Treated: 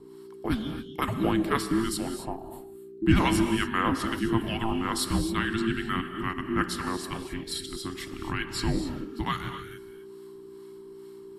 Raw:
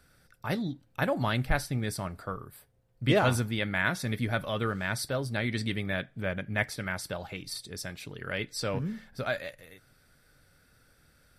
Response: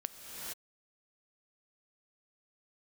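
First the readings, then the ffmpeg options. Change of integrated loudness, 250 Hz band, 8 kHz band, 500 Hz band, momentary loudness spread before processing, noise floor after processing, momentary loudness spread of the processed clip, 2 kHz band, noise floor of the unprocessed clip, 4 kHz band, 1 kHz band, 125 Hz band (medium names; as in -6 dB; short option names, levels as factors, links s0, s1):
+2.5 dB, +7.0 dB, +3.5 dB, -0.5 dB, 11 LU, -45 dBFS, 20 LU, -1.0 dB, -65 dBFS, +3.0 dB, +5.0 dB, -0.5 dB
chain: -filter_complex "[0:a]acrossover=split=1200[s0][s1];[s0]aeval=exprs='val(0)*(1-0.7/2+0.7/2*cos(2*PI*2.3*n/s))':c=same[s2];[s1]aeval=exprs='val(0)*(1-0.7/2-0.7/2*cos(2*PI*2.3*n/s))':c=same[s3];[s2][s3]amix=inputs=2:normalize=0,aeval=exprs='val(0)+0.00224*(sin(2*PI*60*n/s)+sin(2*PI*2*60*n/s)/2+sin(2*PI*3*60*n/s)/3+sin(2*PI*4*60*n/s)/4+sin(2*PI*5*60*n/s)/5)':c=same,afreqshift=-450[s4];[1:a]atrim=start_sample=2205,afade=t=out:st=0.33:d=0.01,atrim=end_sample=14994[s5];[s4][s5]afir=irnorm=-1:irlink=0,volume=2.51"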